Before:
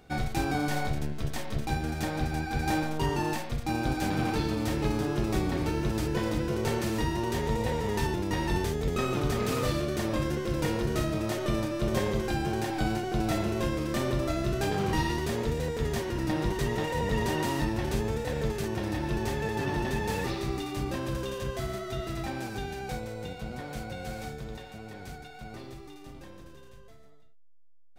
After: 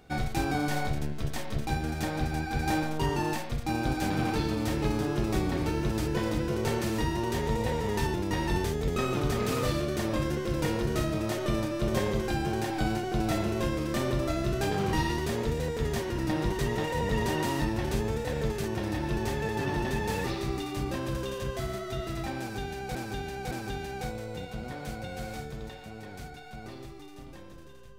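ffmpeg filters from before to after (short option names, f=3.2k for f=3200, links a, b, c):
-filter_complex "[0:a]asplit=3[a][b][c];[a]atrim=end=22.952[d];[b]atrim=start=22.388:end=22.952[e];[c]atrim=start=22.388[f];[d][e]acrossfade=d=0.004:c1=hsin:c2=hsin[g];[g][f]acrossfade=d=0.004:c1=hsin:c2=hsin"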